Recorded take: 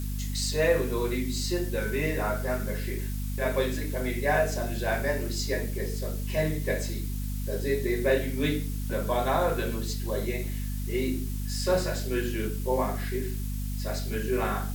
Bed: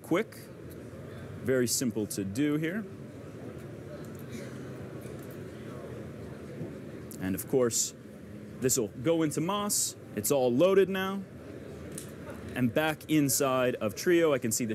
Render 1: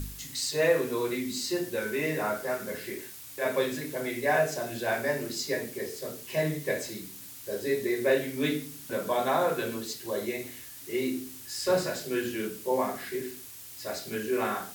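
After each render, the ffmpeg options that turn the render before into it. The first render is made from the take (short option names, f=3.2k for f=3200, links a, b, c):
-af "bandreject=f=50:t=h:w=4,bandreject=f=100:t=h:w=4,bandreject=f=150:t=h:w=4,bandreject=f=200:t=h:w=4,bandreject=f=250:t=h:w=4"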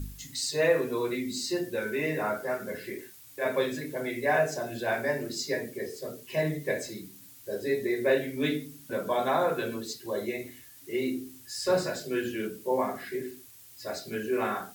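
-af "afftdn=nr=8:nf=-45"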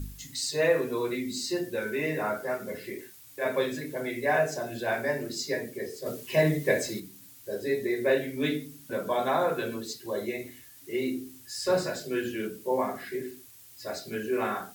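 -filter_complex "[0:a]asettb=1/sr,asplit=3[a][b][c];[a]atrim=end=2.564[d];[b]atrim=start=2.56:end=3,asetpts=PTS-STARTPTS,afade=t=in:d=0.004:c=qsin,afade=t=out:st=0.436:d=0.004:c=qsin,bandreject=f=1.6k:w=5.1[e];[c]atrim=start=2.996[f];[d][e]acrossfade=d=0.004:c1=hsin:c2=qsin[g];[g][f]acrossfade=d=0.004:c1=qsin:c2=hsin,asettb=1/sr,asplit=3[h][i][j];[h]atrim=end=6.064[k];[i]atrim=start=6.06:end=7,asetpts=PTS-STARTPTS,afade=t=in:d=0.004:c=qsin,afade=t=out:st=0.936:d=0.004:c=qsin,acontrast=32[l];[j]atrim=start=6.996[m];[k][l]acrossfade=d=0.004:c1=hsin:c2=qsin[n];[n][m]acrossfade=d=0.004:c1=qsin:c2=hsin"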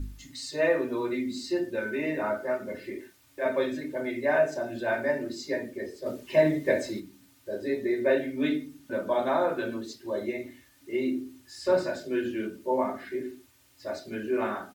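-af "lowpass=f=2.3k:p=1,aecho=1:1:3.3:0.53"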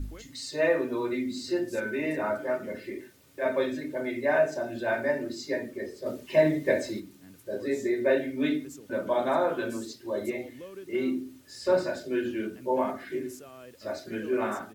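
-filter_complex "[1:a]volume=-20.5dB[a];[0:a][a]amix=inputs=2:normalize=0"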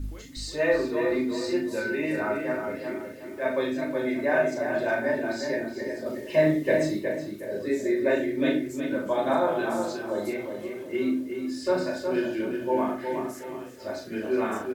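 -filter_complex "[0:a]asplit=2[a][b];[b]adelay=39,volume=-5dB[c];[a][c]amix=inputs=2:normalize=0,asplit=2[d][e];[e]adelay=366,lowpass=f=3.2k:p=1,volume=-5.5dB,asplit=2[f][g];[g]adelay=366,lowpass=f=3.2k:p=1,volume=0.36,asplit=2[h][i];[i]adelay=366,lowpass=f=3.2k:p=1,volume=0.36,asplit=2[j][k];[k]adelay=366,lowpass=f=3.2k:p=1,volume=0.36[l];[d][f][h][j][l]amix=inputs=5:normalize=0"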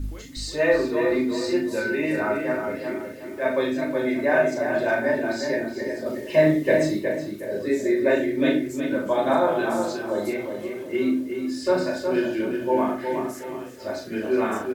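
-af "volume=3.5dB"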